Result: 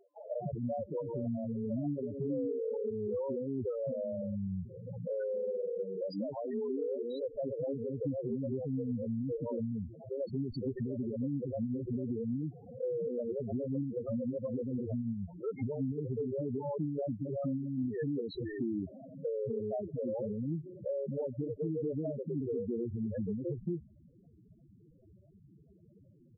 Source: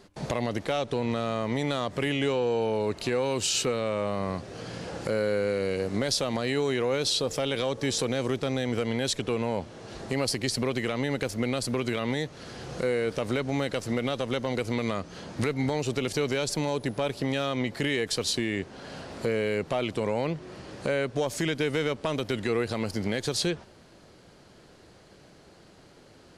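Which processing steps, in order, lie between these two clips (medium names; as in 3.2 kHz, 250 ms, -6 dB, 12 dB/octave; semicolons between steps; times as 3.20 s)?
median filter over 15 samples; 4.93–7.10 s: bass shelf 200 Hz -11 dB; bands offset in time highs, lows 230 ms, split 410 Hz; loudest bins only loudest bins 4; compression, threshold -34 dBFS, peak gain reduction 8 dB; dynamic bell 310 Hz, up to +4 dB, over -50 dBFS, Q 2.3; trim +1 dB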